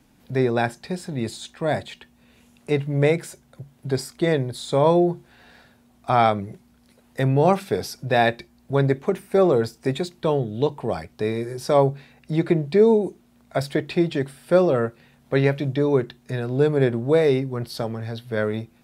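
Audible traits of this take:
background noise floor −58 dBFS
spectral slope −6.0 dB per octave

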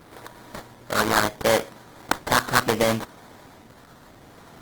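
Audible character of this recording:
phaser sweep stages 12, 0.7 Hz, lowest notch 780–4,500 Hz
aliases and images of a low sample rate 2,700 Hz, jitter 20%
Opus

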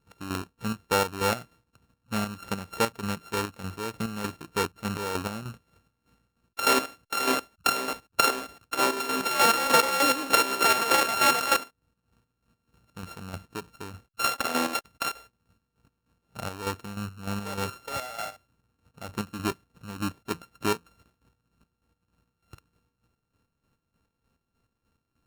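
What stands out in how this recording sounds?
a buzz of ramps at a fixed pitch in blocks of 32 samples
chopped level 3.3 Hz, depth 60%, duty 40%
AAC

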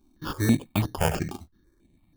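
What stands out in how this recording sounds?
aliases and images of a low sample rate 2,000 Hz, jitter 0%
notches that jump at a steady rate 6.1 Hz 490–7,900 Hz

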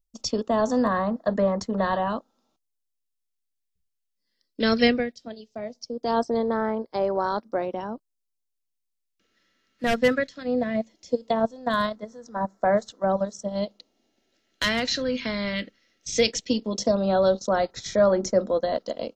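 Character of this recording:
phaser sweep stages 2, 0.18 Hz, lowest notch 800–2,600 Hz

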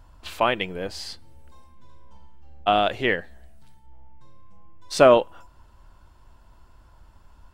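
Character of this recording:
background noise floor −54 dBFS
spectral slope −4.0 dB per octave

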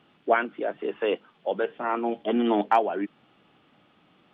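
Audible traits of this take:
background noise floor −63 dBFS
spectral slope −3.0 dB per octave

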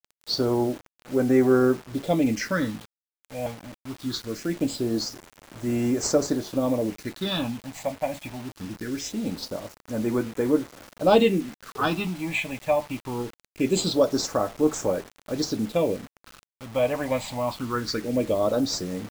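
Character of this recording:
phaser sweep stages 6, 0.22 Hz, lowest notch 360–4,100 Hz
a quantiser's noise floor 8 bits, dither none

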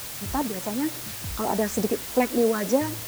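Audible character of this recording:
phaser sweep stages 6, 3.4 Hz, lowest notch 670–3,000 Hz
a quantiser's noise floor 6 bits, dither triangular

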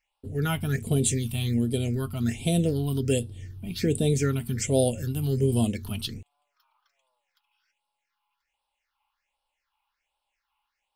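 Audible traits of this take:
phaser sweep stages 6, 1.3 Hz, lowest notch 460–1,900 Hz

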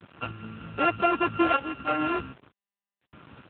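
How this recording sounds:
a buzz of ramps at a fixed pitch in blocks of 32 samples
sample-and-hold tremolo 3.2 Hz, depth 70%
a quantiser's noise floor 8 bits, dither none
AMR narrowband

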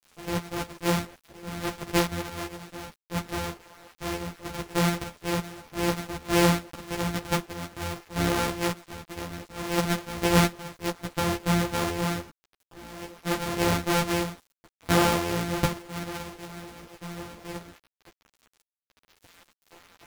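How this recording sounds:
a buzz of ramps at a fixed pitch in blocks of 256 samples
sample-and-hold tremolo
a quantiser's noise floor 8 bits, dither none
a shimmering, thickened sound

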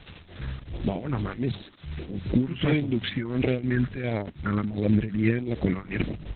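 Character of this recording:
phaser sweep stages 4, 1.5 Hz, lowest notch 630–1,400 Hz
a quantiser's noise floor 8 bits, dither triangular
tremolo triangle 2.7 Hz, depth 80%
Opus

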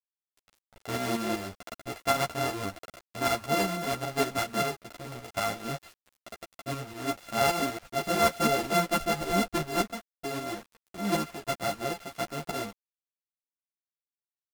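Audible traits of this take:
a buzz of ramps at a fixed pitch in blocks of 64 samples
tremolo saw up 5.2 Hz, depth 60%
a quantiser's noise floor 8 bits, dither none
a shimmering, thickened sound

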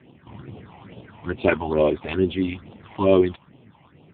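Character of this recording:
a quantiser's noise floor 10 bits, dither none
phaser sweep stages 6, 2.3 Hz, lowest notch 370–1,600 Hz
AMR narrowband

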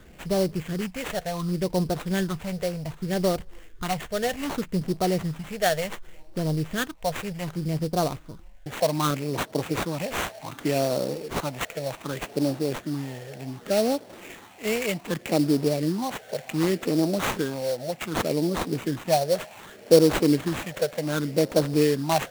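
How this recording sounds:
phaser sweep stages 6, 0.66 Hz, lowest notch 280–1,900 Hz
aliases and images of a low sample rate 5,000 Hz, jitter 20%

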